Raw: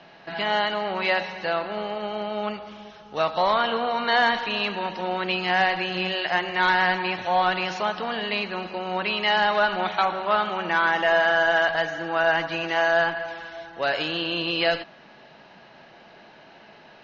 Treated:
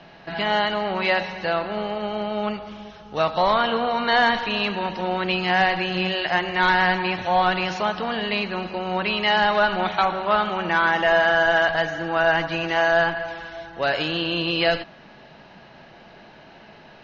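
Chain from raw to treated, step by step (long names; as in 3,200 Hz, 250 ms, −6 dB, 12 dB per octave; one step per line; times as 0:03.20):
low-shelf EQ 150 Hz +11 dB
level +1.5 dB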